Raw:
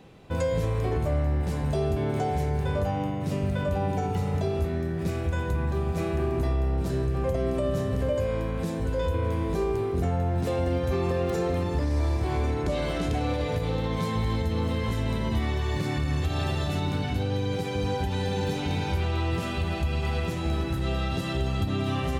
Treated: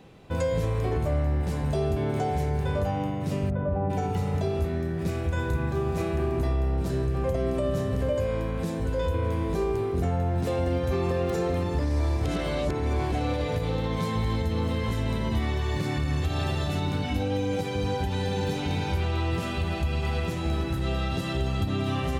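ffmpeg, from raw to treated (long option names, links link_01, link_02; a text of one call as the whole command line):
ffmpeg -i in.wav -filter_complex "[0:a]asplit=3[link_01][link_02][link_03];[link_01]afade=type=out:start_time=3.49:duration=0.02[link_04];[link_02]lowpass=1100,afade=type=in:start_time=3.49:duration=0.02,afade=type=out:start_time=3.89:duration=0.02[link_05];[link_03]afade=type=in:start_time=3.89:duration=0.02[link_06];[link_04][link_05][link_06]amix=inputs=3:normalize=0,asettb=1/sr,asplit=3[link_07][link_08][link_09];[link_07]atrim=end=5.344[link_10];[link_08]atrim=start=5.34:end=6.02,asetpts=PTS-STARTPTS,afade=type=in:duration=0.004:curve=qsin,afade=type=out:start_time=0.676:duration=0.004:curve=qsin,asplit=2[link_11][link_12];[link_12]adelay=33,volume=-5.5dB[link_13];[link_11][link_13]amix=inputs=2:normalize=0,atrim=end_sample=29988[link_14];[link_09]atrim=start=6.016[link_15];[link_10][link_14]acrossfade=duration=0.004:curve1=hsin:curve2=qsin[link_16];[link_16][link_15]acrossfade=duration=0.004:curve1=qsin:curve2=hsin,asettb=1/sr,asplit=3[link_17][link_18][link_19];[link_17]atrim=end=17.054[link_20];[link_18]atrim=start=17.05:end=17.61,asetpts=PTS-STARTPTS,afade=type=in:duration=0.004:curve=qsin,afade=type=out:start_time=0.556:duration=0.004:curve=qsin,aecho=1:1:3.7:0.63,atrim=end_sample=24696[link_21];[link_19]atrim=start=17.606[link_22];[link_20][link_21]acrossfade=duration=0.004:curve1=hsin:curve2=qsin[link_23];[link_23][link_22]acrossfade=duration=0.004:curve1=qsin:curve2=hsin,asplit=3[link_24][link_25][link_26];[link_24]atrim=end=12.252[link_27];[link_25]atrim=start=12.248:end=13.122,asetpts=PTS-STARTPTS,areverse[link_28];[link_26]atrim=start=13.118[link_29];[link_27][link_28]acrossfade=duration=0.004:curve1=hsin:curve2=hsin[link_30];[link_30][link_29]acrossfade=duration=0.004:curve1=hsin:curve2=hsin" out.wav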